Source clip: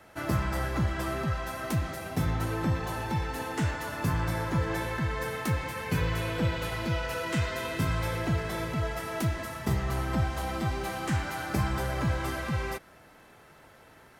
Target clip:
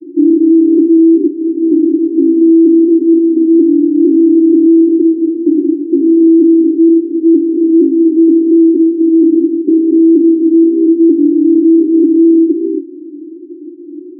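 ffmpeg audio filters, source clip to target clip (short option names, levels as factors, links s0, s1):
-filter_complex "[0:a]asplit=2[s0][s1];[s1]asoftclip=type=tanh:threshold=0.0668,volume=0.668[s2];[s0][s2]amix=inputs=2:normalize=0,asuperpass=centerf=320:order=12:qfactor=3.6,alimiter=level_in=59.6:limit=0.891:release=50:level=0:latency=1,volume=0.891"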